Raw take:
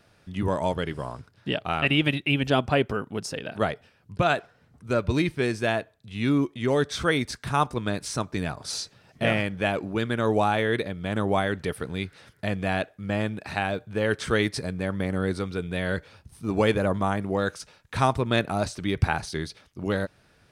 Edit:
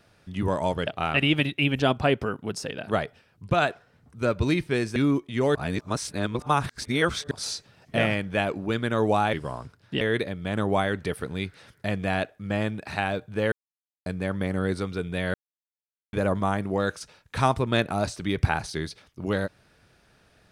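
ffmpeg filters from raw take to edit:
ffmpeg -i in.wav -filter_complex "[0:a]asplit=11[link_01][link_02][link_03][link_04][link_05][link_06][link_07][link_08][link_09][link_10][link_11];[link_01]atrim=end=0.872[link_12];[link_02]atrim=start=1.548:end=5.642[link_13];[link_03]atrim=start=6.228:end=6.822[link_14];[link_04]atrim=start=6.818:end=8.582,asetpts=PTS-STARTPTS,areverse[link_15];[link_05]atrim=start=8.578:end=10.602[link_16];[link_06]atrim=start=0.868:end=1.552[link_17];[link_07]atrim=start=10.598:end=14.11,asetpts=PTS-STARTPTS,afade=type=out:start_time=3.508:duration=0.004:curve=hsin[link_18];[link_08]atrim=start=14.11:end=14.65,asetpts=PTS-STARTPTS,volume=0[link_19];[link_09]atrim=start=14.65:end=15.93,asetpts=PTS-STARTPTS,afade=type=in:duration=0.004:curve=hsin,afade=type=out:start_time=1.276:duration=0.004:curve=hsin[link_20];[link_10]atrim=start=15.93:end=16.72,asetpts=PTS-STARTPTS,volume=0[link_21];[link_11]atrim=start=16.72,asetpts=PTS-STARTPTS,afade=type=in:duration=0.004:curve=hsin[link_22];[link_12][link_13]acrossfade=duration=0.004:curve1=hsin:curve2=hsin[link_23];[link_23][link_14]acrossfade=duration=0.004:curve1=hsin:curve2=hsin[link_24];[link_24][link_15]acrossfade=duration=0.004:curve1=hsin:curve2=hsin[link_25];[link_25][link_16]acrossfade=duration=0.004:curve1=hsin:curve2=hsin[link_26];[link_26][link_17]acrossfade=duration=0.004:curve1=hsin:curve2=hsin[link_27];[link_18][link_19][link_20][link_21][link_22]concat=n=5:v=0:a=1[link_28];[link_27][link_28]acrossfade=duration=0.004:curve1=hsin:curve2=hsin" out.wav

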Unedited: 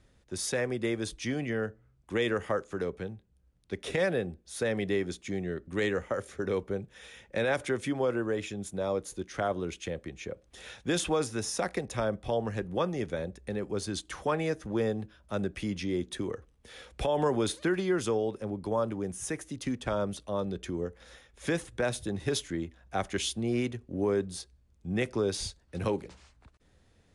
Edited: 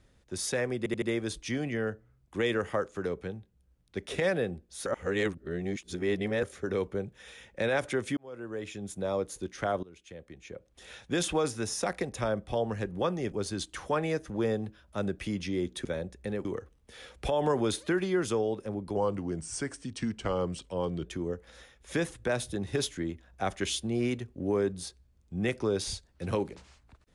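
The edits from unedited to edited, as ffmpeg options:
ffmpeg -i in.wav -filter_complex "[0:a]asplit=13[link_01][link_02][link_03][link_04][link_05][link_06][link_07][link_08][link_09][link_10][link_11][link_12][link_13];[link_01]atrim=end=0.862[link_14];[link_02]atrim=start=0.778:end=0.862[link_15];[link_03]atrim=start=0.778:end=0.862[link_16];[link_04]atrim=start=0.778:end=4.622[link_17];[link_05]atrim=start=4.618:end=6.192,asetpts=PTS-STARTPTS,areverse[link_18];[link_06]atrim=start=6.188:end=7.93,asetpts=PTS-STARTPTS,afade=type=out:start_time=1.738:duration=0.004:curve=hsin[link_19];[link_07]atrim=start=7.93:end=9.59,asetpts=PTS-STARTPTS,afade=type=in:duration=0.8,afade=type=out:start_time=1.656:duration=0.004:curve=hsin:silence=0.0891251[link_20];[link_08]atrim=start=9.59:end=13.082,asetpts=PTS-STARTPTS,afade=type=in:duration=1.41:silence=0.0891251[link_21];[link_09]atrim=start=13.678:end=16.212[link_22];[link_10]atrim=start=13.078:end=13.682[link_23];[link_11]atrim=start=16.208:end=18.724[link_24];[link_12]atrim=start=18.72:end=20.58,asetpts=PTS-STARTPTS,asetrate=39249,aresample=44100,atrim=end_sample=92164,asetpts=PTS-STARTPTS[link_25];[link_13]atrim=start=20.576[link_26];[link_14][link_15]acrossfade=duration=0.004:curve1=hsin:curve2=hsin[link_27];[link_27][link_16]acrossfade=duration=0.004:curve1=hsin:curve2=hsin[link_28];[link_28][link_17]acrossfade=duration=0.004:curve1=hsin:curve2=hsin[link_29];[link_29][link_18]acrossfade=duration=0.004:curve1=hsin:curve2=hsin[link_30];[link_19][link_20][link_21]concat=n=3:v=0:a=1[link_31];[link_30][link_31]acrossfade=duration=0.004:curve1=hsin:curve2=hsin[link_32];[link_32][link_22]acrossfade=duration=0.004:curve1=hsin:curve2=hsin[link_33];[link_33][link_23]acrossfade=duration=0.004:curve1=hsin:curve2=hsin[link_34];[link_34][link_24]acrossfade=duration=0.004:curve1=hsin:curve2=hsin[link_35];[link_35][link_25]acrossfade=duration=0.004:curve1=hsin:curve2=hsin[link_36];[link_36][link_26]acrossfade=duration=0.004:curve1=hsin:curve2=hsin" out.wav

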